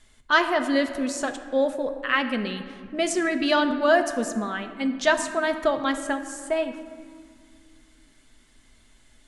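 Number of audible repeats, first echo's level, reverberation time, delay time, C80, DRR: no echo, no echo, 2.1 s, no echo, 11.0 dB, 6.0 dB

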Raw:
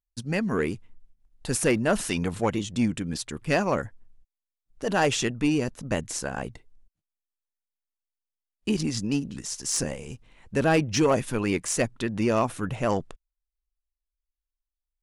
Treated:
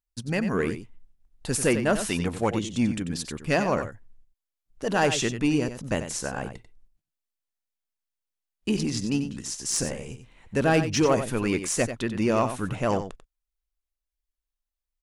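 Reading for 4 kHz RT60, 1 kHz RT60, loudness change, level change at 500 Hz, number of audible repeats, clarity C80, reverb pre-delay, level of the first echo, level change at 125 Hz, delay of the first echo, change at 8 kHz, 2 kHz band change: no reverb, no reverb, +0.5 dB, +0.5 dB, 1, no reverb, no reverb, -10.0 dB, +0.5 dB, 92 ms, +0.5 dB, +0.5 dB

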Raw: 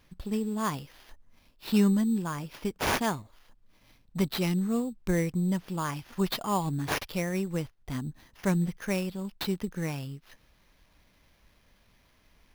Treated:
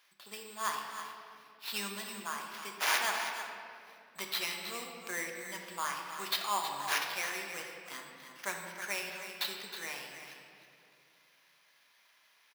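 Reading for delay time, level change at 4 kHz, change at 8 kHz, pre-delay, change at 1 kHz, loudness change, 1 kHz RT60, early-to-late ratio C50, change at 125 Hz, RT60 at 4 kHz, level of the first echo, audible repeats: 318 ms, +2.0 dB, +1.5 dB, 3 ms, -1.5 dB, -6.0 dB, 2.1 s, 2.5 dB, -27.5 dB, 1.4 s, -10.0 dB, 1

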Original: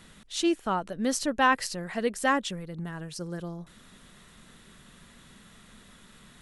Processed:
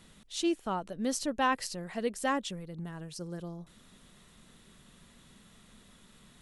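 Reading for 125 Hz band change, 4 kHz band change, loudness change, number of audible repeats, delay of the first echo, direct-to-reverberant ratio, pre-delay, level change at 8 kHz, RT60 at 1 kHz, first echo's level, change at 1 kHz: -4.0 dB, -4.5 dB, -5.0 dB, no echo, no echo, no reverb, no reverb, -4.0 dB, no reverb, no echo, -5.5 dB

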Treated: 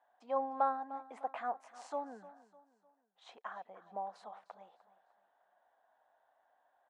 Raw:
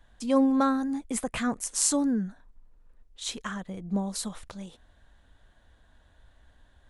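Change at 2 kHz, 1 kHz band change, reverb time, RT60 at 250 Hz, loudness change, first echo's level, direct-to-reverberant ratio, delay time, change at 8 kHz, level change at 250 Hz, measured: -12.5 dB, -2.0 dB, no reverb, no reverb, -12.0 dB, -17.0 dB, no reverb, 302 ms, -36.5 dB, -26.0 dB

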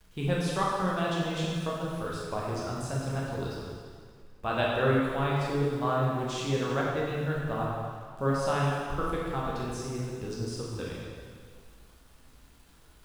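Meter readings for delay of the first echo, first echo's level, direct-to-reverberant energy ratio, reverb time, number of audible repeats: no echo, no echo, -5.0 dB, 1.9 s, no echo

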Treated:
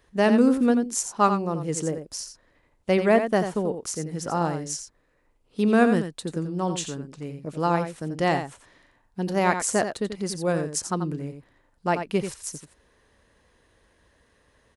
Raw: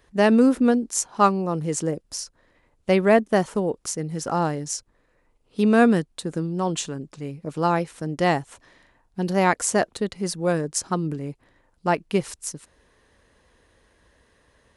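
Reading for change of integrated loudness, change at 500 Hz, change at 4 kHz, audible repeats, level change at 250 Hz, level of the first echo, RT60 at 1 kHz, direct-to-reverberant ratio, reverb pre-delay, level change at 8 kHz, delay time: -2.0 dB, -2.0 dB, -2.0 dB, 1, -2.0 dB, -8.5 dB, no reverb, no reverb, no reverb, -2.0 dB, 87 ms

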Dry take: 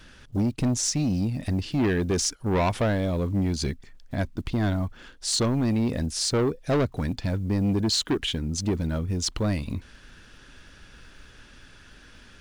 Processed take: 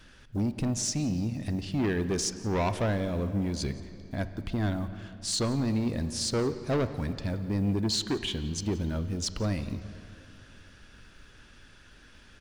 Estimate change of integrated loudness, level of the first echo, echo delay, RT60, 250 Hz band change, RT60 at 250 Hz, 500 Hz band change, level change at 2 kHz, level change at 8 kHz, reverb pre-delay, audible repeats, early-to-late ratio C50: -4.0 dB, -22.0 dB, 175 ms, 2.8 s, -4.0 dB, 3.1 s, -4.0 dB, -4.0 dB, -4.5 dB, 21 ms, 1, 11.5 dB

